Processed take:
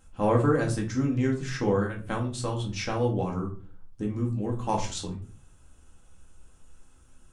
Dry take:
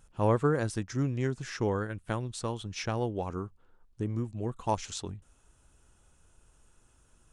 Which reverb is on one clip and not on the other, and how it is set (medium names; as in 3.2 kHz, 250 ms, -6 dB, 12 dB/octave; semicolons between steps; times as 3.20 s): simulated room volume 240 m³, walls furnished, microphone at 2.1 m